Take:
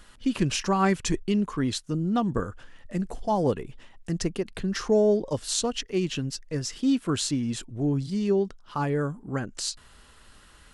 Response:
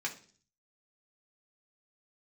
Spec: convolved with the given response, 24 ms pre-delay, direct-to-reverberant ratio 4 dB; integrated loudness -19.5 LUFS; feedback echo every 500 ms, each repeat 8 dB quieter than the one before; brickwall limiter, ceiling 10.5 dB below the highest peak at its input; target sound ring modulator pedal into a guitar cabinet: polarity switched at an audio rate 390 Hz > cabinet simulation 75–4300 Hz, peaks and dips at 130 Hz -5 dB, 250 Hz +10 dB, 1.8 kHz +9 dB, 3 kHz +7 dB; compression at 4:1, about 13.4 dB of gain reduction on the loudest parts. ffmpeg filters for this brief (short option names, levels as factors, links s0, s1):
-filter_complex "[0:a]acompressor=threshold=0.0178:ratio=4,alimiter=level_in=1.88:limit=0.0631:level=0:latency=1,volume=0.531,aecho=1:1:500|1000|1500|2000|2500:0.398|0.159|0.0637|0.0255|0.0102,asplit=2[s0][s1];[1:a]atrim=start_sample=2205,adelay=24[s2];[s1][s2]afir=irnorm=-1:irlink=0,volume=0.422[s3];[s0][s3]amix=inputs=2:normalize=0,aeval=exprs='val(0)*sgn(sin(2*PI*390*n/s))':c=same,highpass=75,equalizer=f=130:t=q:w=4:g=-5,equalizer=f=250:t=q:w=4:g=10,equalizer=f=1800:t=q:w=4:g=9,equalizer=f=3000:t=q:w=4:g=7,lowpass=f=4300:w=0.5412,lowpass=f=4300:w=1.3066,volume=5.96"